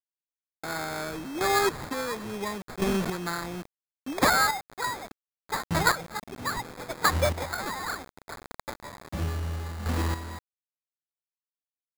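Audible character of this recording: a quantiser's noise floor 6-bit, dither none; chopped level 0.71 Hz, depth 65%, duty 20%; aliases and images of a low sample rate 2900 Hz, jitter 0%

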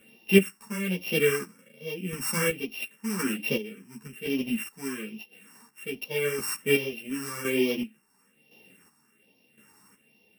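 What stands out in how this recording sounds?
a buzz of ramps at a fixed pitch in blocks of 16 samples; phasing stages 4, 1.2 Hz, lowest notch 520–1400 Hz; chopped level 0.94 Hz, depth 60%, duty 35%; a shimmering, thickened sound

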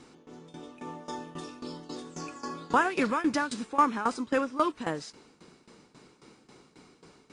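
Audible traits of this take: tremolo saw down 3.7 Hz, depth 85%

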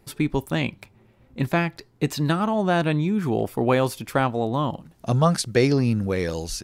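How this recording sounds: noise floor -58 dBFS; spectral tilt -6.0 dB/oct

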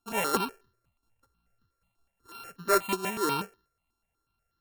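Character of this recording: a buzz of ramps at a fixed pitch in blocks of 32 samples; notches that jump at a steady rate 8.2 Hz 540–2400 Hz

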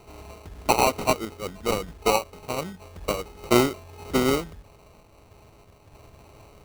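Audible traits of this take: a buzz of ramps at a fixed pitch in blocks of 8 samples; random-step tremolo 3.2 Hz; aliases and images of a low sample rate 1700 Hz, jitter 0%

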